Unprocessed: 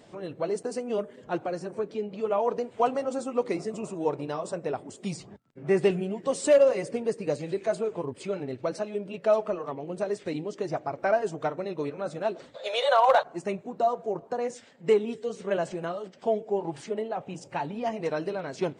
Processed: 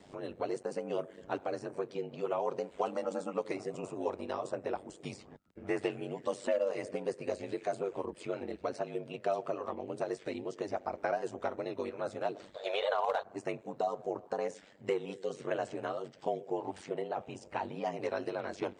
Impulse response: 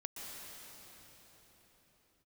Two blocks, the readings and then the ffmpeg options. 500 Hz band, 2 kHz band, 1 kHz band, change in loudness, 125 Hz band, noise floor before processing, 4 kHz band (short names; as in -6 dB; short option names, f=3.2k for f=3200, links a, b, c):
-8.5 dB, -6.5 dB, -8.0 dB, -8.0 dB, -9.5 dB, -53 dBFS, -8.0 dB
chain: -filter_complex "[0:a]acrossover=split=240|480|3200[a][b][c][d];[a]acompressor=threshold=-52dB:ratio=4[e];[b]acompressor=threshold=-37dB:ratio=4[f];[c]acompressor=threshold=-30dB:ratio=4[g];[d]acompressor=threshold=-53dB:ratio=4[h];[e][f][g][h]amix=inputs=4:normalize=0,aeval=exprs='val(0)*sin(2*PI*48*n/s)':c=same"